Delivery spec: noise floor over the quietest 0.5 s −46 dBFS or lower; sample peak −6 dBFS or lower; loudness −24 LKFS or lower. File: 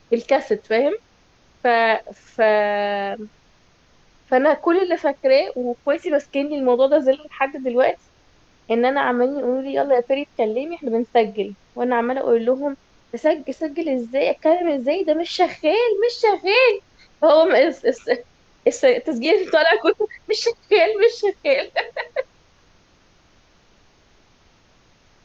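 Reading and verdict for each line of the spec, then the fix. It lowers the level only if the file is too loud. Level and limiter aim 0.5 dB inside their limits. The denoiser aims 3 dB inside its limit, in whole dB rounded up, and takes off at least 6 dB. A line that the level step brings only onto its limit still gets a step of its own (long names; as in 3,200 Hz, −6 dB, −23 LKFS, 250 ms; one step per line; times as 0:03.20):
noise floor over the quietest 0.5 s −56 dBFS: in spec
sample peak −5.0 dBFS: out of spec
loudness −19.5 LKFS: out of spec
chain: level −5 dB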